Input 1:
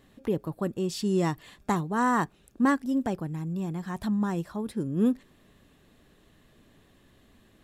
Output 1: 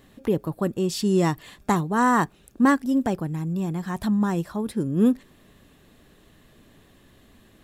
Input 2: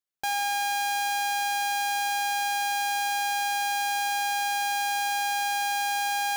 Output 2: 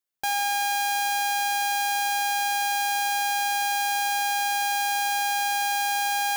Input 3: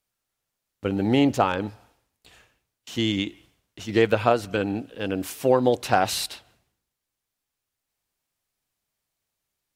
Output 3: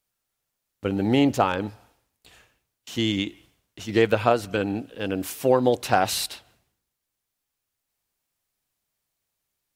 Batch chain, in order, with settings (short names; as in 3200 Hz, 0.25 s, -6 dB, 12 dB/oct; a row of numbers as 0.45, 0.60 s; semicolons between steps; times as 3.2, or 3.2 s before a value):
high shelf 11000 Hz +4.5 dB; match loudness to -24 LUFS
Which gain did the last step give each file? +5.0, +2.0, 0.0 dB